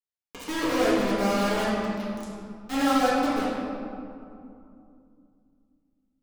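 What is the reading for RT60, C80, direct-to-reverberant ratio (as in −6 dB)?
2.6 s, −0.5 dB, −10.5 dB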